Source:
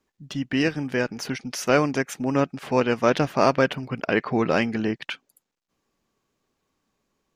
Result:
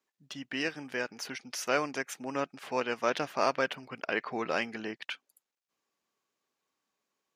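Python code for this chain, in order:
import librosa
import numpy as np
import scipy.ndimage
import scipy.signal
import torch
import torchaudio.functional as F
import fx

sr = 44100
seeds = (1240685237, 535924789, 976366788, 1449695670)

y = fx.highpass(x, sr, hz=710.0, slope=6)
y = y * librosa.db_to_amplitude(-5.5)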